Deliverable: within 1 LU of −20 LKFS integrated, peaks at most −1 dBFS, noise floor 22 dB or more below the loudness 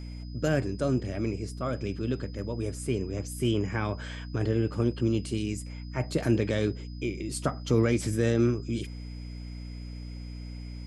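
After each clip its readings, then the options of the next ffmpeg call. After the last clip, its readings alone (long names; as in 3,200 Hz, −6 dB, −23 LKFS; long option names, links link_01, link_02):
mains hum 60 Hz; hum harmonics up to 300 Hz; level of the hum −36 dBFS; interfering tone 5,000 Hz; level of the tone −54 dBFS; integrated loudness −29.5 LKFS; sample peak −13.0 dBFS; target loudness −20.0 LKFS
→ -af "bandreject=frequency=60:width_type=h:width=4,bandreject=frequency=120:width_type=h:width=4,bandreject=frequency=180:width_type=h:width=4,bandreject=frequency=240:width_type=h:width=4,bandreject=frequency=300:width_type=h:width=4"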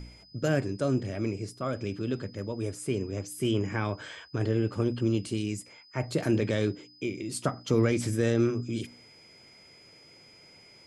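mains hum none found; interfering tone 5,000 Hz; level of the tone −54 dBFS
→ -af "bandreject=frequency=5000:width=30"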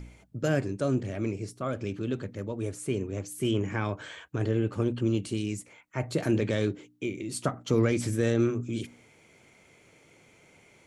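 interfering tone none found; integrated loudness −30.5 LKFS; sample peak −13.0 dBFS; target loudness −20.0 LKFS
→ -af "volume=10.5dB"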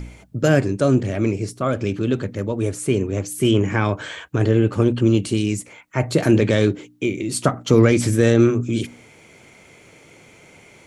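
integrated loudness −20.0 LKFS; sample peak −2.5 dBFS; background noise floor −49 dBFS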